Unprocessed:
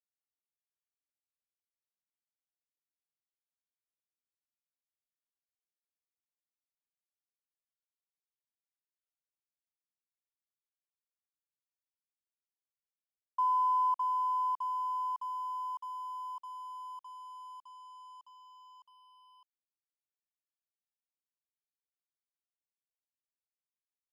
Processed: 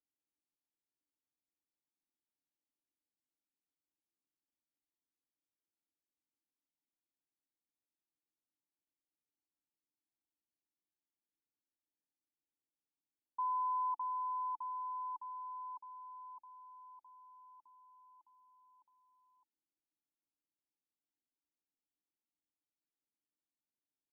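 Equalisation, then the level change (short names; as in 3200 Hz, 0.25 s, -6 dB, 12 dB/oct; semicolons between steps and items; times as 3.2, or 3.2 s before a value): dynamic EQ 950 Hz, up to +5 dB, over -41 dBFS; vocal tract filter u; +12.0 dB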